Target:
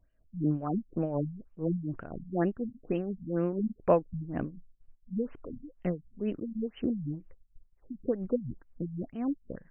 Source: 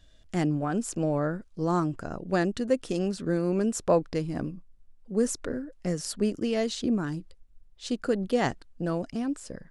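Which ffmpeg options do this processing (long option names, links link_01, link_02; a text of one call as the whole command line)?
ffmpeg -i in.wav -af "agate=range=-8dB:threshold=-51dB:ratio=16:detection=peak,tremolo=f=4.1:d=0.65,afftfilt=real='re*lt(b*sr/1024,210*pow(3200/210,0.5+0.5*sin(2*PI*2.1*pts/sr)))':imag='im*lt(b*sr/1024,210*pow(3200/210,0.5+0.5*sin(2*PI*2.1*pts/sr)))':win_size=1024:overlap=0.75" out.wav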